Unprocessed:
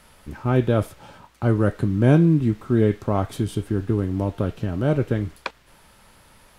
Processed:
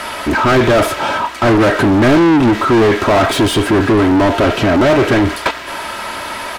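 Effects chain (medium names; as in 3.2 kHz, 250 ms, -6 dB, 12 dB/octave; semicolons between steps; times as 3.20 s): comb 3.1 ms, depth 47%; overdrive pedal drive 37 dB, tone 2.3 kHz, clips at -6.5 dBFS; trim +3 dB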